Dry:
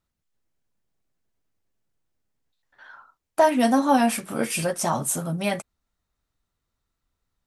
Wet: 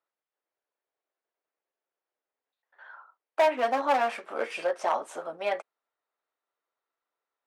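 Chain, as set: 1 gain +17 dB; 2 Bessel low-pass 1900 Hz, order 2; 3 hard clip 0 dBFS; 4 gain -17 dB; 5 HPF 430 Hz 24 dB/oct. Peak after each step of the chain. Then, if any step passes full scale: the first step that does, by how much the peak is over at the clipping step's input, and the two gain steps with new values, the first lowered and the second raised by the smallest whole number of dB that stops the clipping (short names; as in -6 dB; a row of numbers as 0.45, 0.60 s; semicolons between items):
+9.5, +9.0, 0.0, -17.0, -11.5 dBFS; step 1, 9.0 dB; step 1 +8 dB, step 4 -8 dB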